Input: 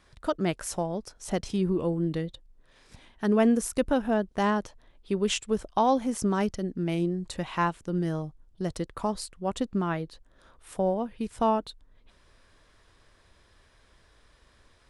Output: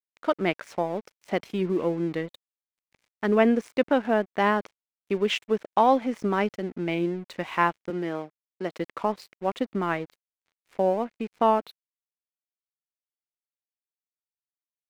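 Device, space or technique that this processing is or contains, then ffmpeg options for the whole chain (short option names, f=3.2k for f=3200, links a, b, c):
pocket radio on a weak battery: -filter_complex "[0:a]highpass=250,lowpass=3.3k,aeval=exprs='sgn(val(0))*max(abs(val(0))-0.00282,0)':c=same,equalizer=f=2.2k:t=o:w=0.53:g=6,asettb=1/sr,asplit=3[a][b][c];[a]atrim=end=7.904[d];[b]atrim=start=7.9:end=8.78,asetpts=PTS-STARTPTS,afade=t=in:d=0.004:c=qsin,afade=t=out:st=0.876:d=0.004:c=qsin,highpass=210[e];[c]atrim=start=8.776[f];[d][e]acrossfade=d=0.004:c1=hsin:c2=qsin[g];[g][f]acrossfade=d=0.004:c1=qsin:c2=hsin,volume=4dB"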